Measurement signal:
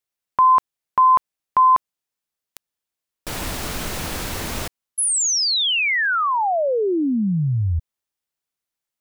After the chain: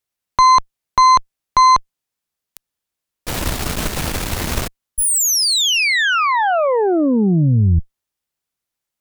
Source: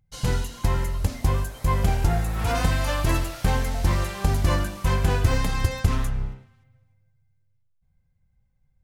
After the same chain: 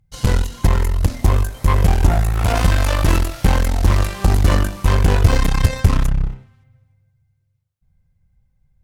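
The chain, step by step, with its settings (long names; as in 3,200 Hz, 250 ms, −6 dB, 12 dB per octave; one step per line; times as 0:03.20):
harmonic generator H 8 −17 dB, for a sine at −6.5 dBFS
low-shelf EQ 180 Hz +5 dB
level +3 dB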